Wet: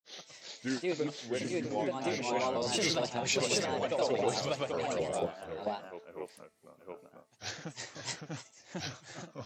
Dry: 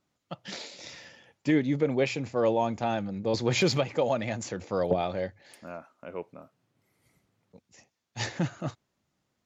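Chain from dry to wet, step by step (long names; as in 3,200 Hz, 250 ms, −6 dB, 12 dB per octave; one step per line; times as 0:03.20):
granular cloud 256 ms, grains 26 per second, spray 847 ms, pitch spread up and down by 3 semitones
bass and treble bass −7 dB, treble +8 dB
hum removal 219.3 Hz, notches 19
level +3 dB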